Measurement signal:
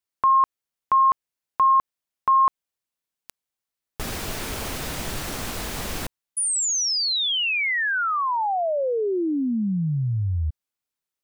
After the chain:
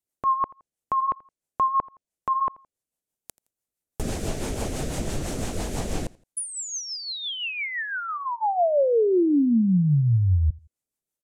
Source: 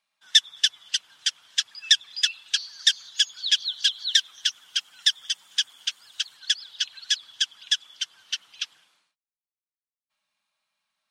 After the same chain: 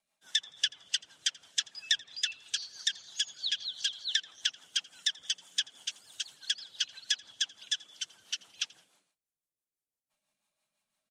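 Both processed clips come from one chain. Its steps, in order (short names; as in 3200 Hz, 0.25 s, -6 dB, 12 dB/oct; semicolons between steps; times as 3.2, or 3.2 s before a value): rotary speaker horn 6 Hz; treble ducked by the level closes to 2700 Hz, closed at -21 dBFS; band shelf 2300 Hz -9 dB 2.7 oct; on a send: feedback echo 84 ms, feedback 34%, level -23.5 dB; on the sum: gain +5.5 dB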